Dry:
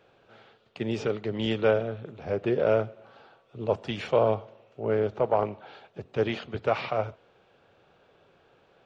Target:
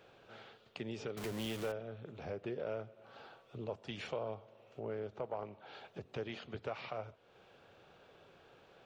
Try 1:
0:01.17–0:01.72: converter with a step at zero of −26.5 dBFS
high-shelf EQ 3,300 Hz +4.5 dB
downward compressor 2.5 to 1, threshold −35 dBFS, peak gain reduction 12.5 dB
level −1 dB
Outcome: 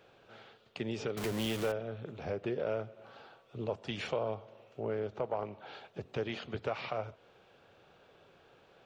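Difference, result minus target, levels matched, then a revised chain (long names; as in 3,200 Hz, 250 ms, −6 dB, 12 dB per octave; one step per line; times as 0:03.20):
downward compressor: peak gain reduction −5.5 dB
0:01.17–0:01.72: converter with a step at zero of −26.5 dBFS
high-shelf EQ 3,300 Hz +4.5 dB
downward compressor 2.5 to 1, threshold −44.5 dBFS, peak gain reduction 18.5 dB
level −1 dB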